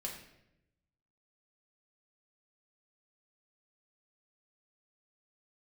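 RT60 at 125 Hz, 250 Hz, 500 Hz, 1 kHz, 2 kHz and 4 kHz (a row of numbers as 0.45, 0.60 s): 1.4, 1.1, 0.95, 0.75, 0.80, 0.65 s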